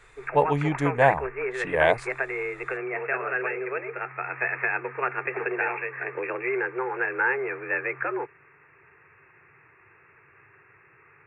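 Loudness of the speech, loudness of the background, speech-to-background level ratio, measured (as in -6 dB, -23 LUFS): -24.5 LUFS, -29.0 LUFS, 4.5 dB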